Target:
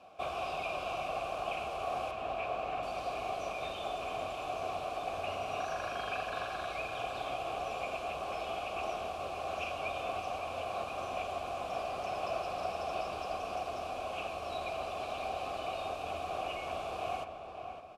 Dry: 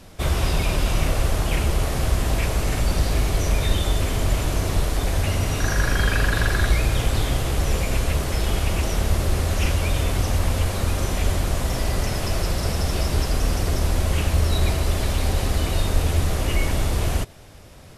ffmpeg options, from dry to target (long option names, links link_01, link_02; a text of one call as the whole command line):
ffmpeg -i in.wav -filter_complex "[0:a]asettb=1/sr,asplit=3[link_01][link_02][link_03];[link_01]atrim=end=2.114[link_04];[link_02]atrim=start=2.11:end=2.83,asetpts=PTS-STARTPTS,afade=type=in:duration=0.004:curve=qsin,afade=type=out:start_time=0.716:duration=0.004:curve=qsin,acrossover=split=3800[link_05][link_06];[link_06]acompressor=threshold=-46dB:ratio=4:attack=1:release=60[link_07];[link_05][link_07]amix=inputs=2:normalize=0[link_08];[link_03]atrim=start=2.826[link_09];[link_04][link_08]acrossfade=duration=0.004:curve1=hsin:curve2=qsin[link_10];[link_10][link_09]acrossfade=duration=0.004:curve1=qsin:curve2=hsin,acrossover=split=2600[link_11][link_12];[link_11]alimiter=limit=-16dB:level=0:latency=1:release=242[link_13];[link_12]highshelf=frequency=12000:gain=3[link_14];[link_13][link_14]amix=inputs=2:normalize=0,asplit=3[link_15][link_16][link_17];[link_15]bandpass=frequency=730:width_type=q:width=8,volume=0dB[link_18];[link_16]bandpass=frequency=1090:width_type=q:width=8,volume=-6dB[link_19];[link_17]bandpass=frequency=2440:width_type=q:width=8,volume=-9dB[link_20];[link_18][link_19][link_20]amix=inputs=3:normalize=0,asplit=2[link_21][link_22];[link_22]adelay=560,lowpass=frequency=2100:poles=1,volume=-6.5dB,asplit=2[link_23][link_24];[link_24]adelay=560,lowpass=frequency=2100:poles=1,volume=0.34,asplit=2[link_25][link_26];[link_26]adelay=560,lowpass=frequency=2100:poles=1,volume=0.34,asplit=2[link_27][link_28];[link_28]adelay=560,lowpass=frequency=2100:poles=1,volume=0.34[link_29];[link_23][link_25][link_27][link_29]amix=inputs=4:normalize=0[link_30];[link_21][link_30]amix=inputs=2:normalize=0,volume=4.5dB" out.wav